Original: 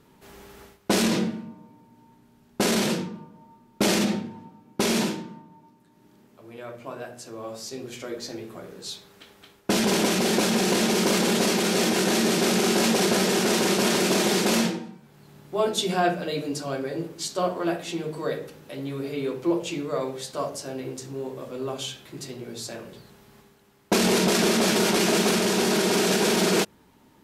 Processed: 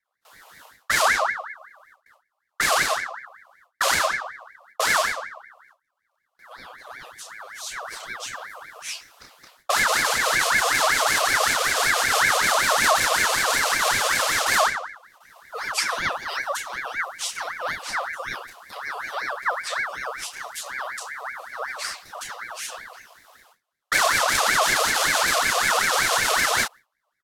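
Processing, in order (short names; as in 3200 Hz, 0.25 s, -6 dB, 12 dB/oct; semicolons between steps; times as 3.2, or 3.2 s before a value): on a send: early reflections 13 ms -16 dB, 31 ms -4 dB; on the sum: AGC gain up to 5.5 dB; gate with hold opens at -38 dBFS; elliptic band-stop 350–1800 Hz, stop band 40 dB; ring modulator with a swept carrier 1400 Hz, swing 40%, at 5.3 Hz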